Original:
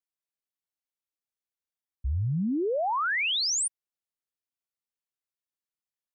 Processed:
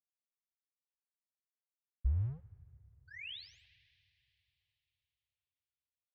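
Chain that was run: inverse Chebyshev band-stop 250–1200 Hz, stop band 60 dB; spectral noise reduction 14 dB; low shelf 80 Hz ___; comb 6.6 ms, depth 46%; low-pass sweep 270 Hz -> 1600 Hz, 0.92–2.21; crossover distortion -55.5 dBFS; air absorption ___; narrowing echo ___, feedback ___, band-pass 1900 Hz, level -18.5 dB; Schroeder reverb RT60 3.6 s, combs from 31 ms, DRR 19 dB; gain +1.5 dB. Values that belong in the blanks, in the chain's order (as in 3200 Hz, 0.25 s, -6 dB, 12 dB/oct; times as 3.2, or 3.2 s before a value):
+3.5 dB, 250 m, 76 ms, 80%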